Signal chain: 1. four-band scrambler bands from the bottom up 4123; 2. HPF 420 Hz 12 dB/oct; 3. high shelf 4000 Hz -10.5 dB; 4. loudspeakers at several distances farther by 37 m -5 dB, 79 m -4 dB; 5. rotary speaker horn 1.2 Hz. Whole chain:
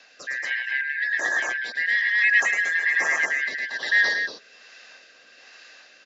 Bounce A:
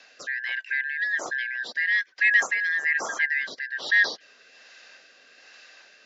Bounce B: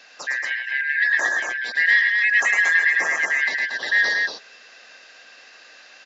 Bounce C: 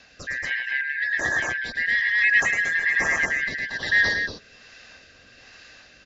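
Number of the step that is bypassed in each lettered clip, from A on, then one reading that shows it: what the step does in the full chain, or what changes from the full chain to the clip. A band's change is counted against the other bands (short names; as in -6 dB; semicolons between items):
4, momentary loudness spread change +2 LU; 5, crest factor change -2.0 dB; 2, 500 Hz band +1.5 dB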